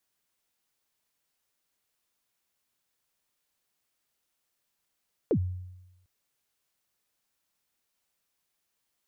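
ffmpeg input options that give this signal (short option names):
-f lavfi -i "aevalsrc='0.106*pow(10,-3*t/0.99)*sin(2*PI*(530*0.075/log(91/530)*(exp(log(91/530)*min(t,0.075)/0.075)-1)+91*max(t-0.075,0)))':d=0.75:s=44100"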